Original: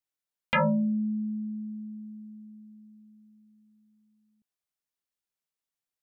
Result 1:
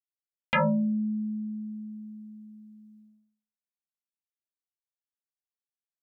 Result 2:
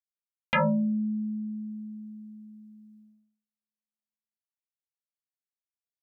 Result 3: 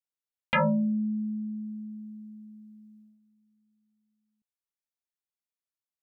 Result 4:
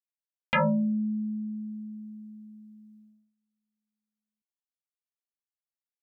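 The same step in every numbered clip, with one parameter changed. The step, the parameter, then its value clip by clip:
gate, range: -56 dB, -42 dB, -9 dB, -23 dB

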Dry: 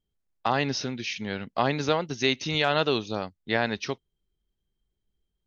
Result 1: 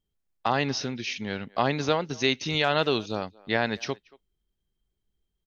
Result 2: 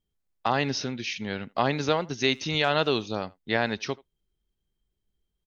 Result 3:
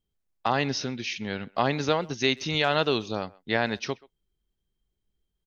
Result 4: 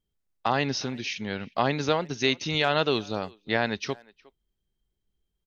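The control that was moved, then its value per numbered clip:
speakerphone echo, time: 230 ms, 80 ms, 130 ms, 360 ms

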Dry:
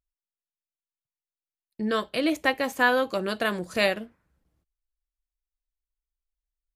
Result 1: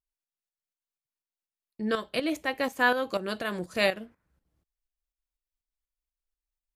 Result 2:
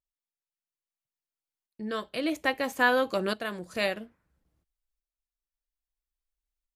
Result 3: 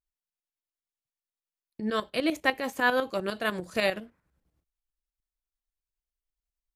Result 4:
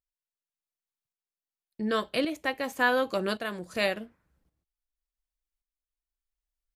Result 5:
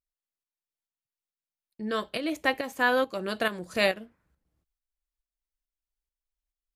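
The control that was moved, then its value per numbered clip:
tremolo, rate: 4.1 Hz, 0.6 Hz, 10 Hz, 0.89 Hz, 2.3 Hz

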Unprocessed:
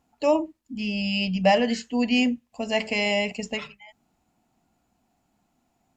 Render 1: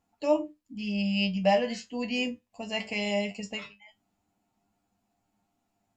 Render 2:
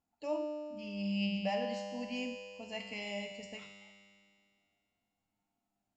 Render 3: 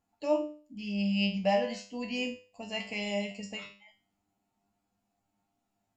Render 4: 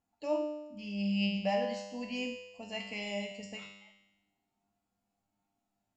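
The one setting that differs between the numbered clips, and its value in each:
feedback comb, decay: 0.16 s, 2.2 s, 0.39 s, 1 s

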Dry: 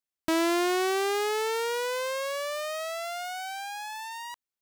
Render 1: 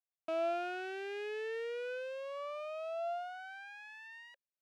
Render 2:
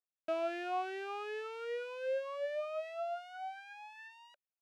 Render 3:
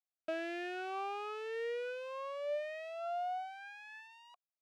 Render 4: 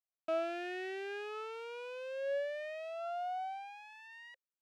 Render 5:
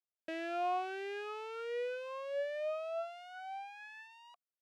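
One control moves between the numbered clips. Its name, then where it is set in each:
talking filter, rate: 0.37 Hz, 2.6 Hz, 0.91 Hz, 0.58 Hz, 1.4 Hz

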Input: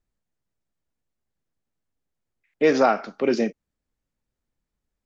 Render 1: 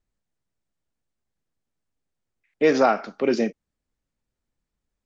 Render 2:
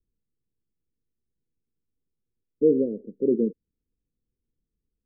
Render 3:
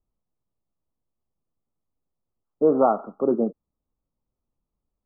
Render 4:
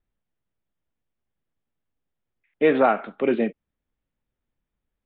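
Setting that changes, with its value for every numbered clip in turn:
steep low-pass, frequency: 9.9 kHz, 500 Hz, 1.3 kHz, 3.7 kHz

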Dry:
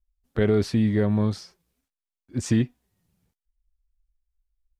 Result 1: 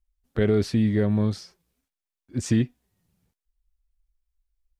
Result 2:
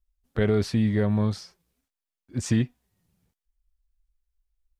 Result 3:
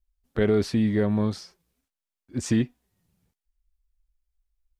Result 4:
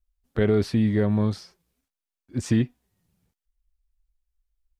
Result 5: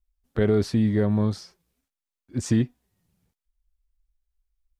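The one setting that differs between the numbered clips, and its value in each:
dynamic bell, frequency: 960 Hz, 320 Hz, 110 Hz, 6.8 kHz, 2.5 kHz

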